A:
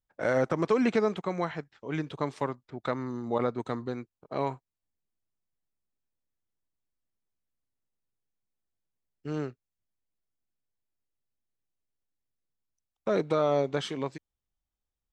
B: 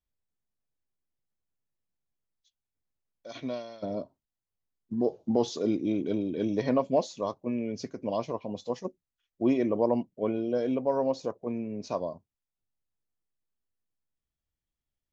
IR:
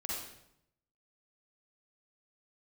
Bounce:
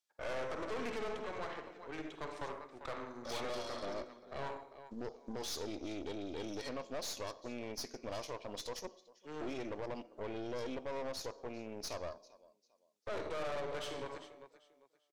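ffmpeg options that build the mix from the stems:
-filter_complex "[0:a]volume=0.447,asplit=3[s0][s1][s2];[s1]volume=0.668[s3];[s2]volume=0.299[s4];[1:a]equalizer=f=5400:w=0.56:g=12,acompressor=threshold=0.0178:ratio=1.5,alimiter=level_in=1.06:limit=0.0631:level=0:latency=1:release=102,volume=0.944,volume=1.06,asplit=3[s5][s6][s7];[s6]volume=0.133[s8];[s7]volume=0.0841[s9];[2:a]atrim=start_sample=2205[s10];[s3][s8]amix=inputs=2:normalize=0[s11];[s11][s10]afir=irnorm=-1:irlink=0[s12];[s4][s9]amix=inputs=2:normalize=0,aecho=0:1:396|792|1188|1584:1|0.27|0.0729|0.0197[s13];[s0][s5][s12][s13]amix=inputs=4:normalize=0,highpass=380,aeval=exprs='(tanh(70.8*val(0)+0.8)-tanh(0.8))/70.8':c=same"

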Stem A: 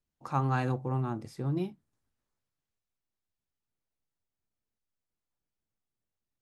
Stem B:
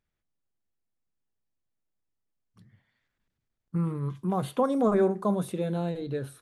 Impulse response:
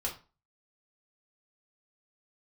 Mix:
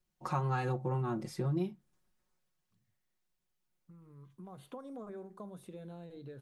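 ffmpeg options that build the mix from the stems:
-filter_complex "[0:a]aecho=1:1:5.5:0.9,volume=1.19[s0];[1:a]acompressor=threshold=0.02:ratio=4,adelay=150,volume=0.282,afade=t=in:st=4.02:d=0.69:silence=0.298538[s1];[s0][s1]amix=inputs=2:normalize=0,acompressor=threshold=0.0251:ratio=3"

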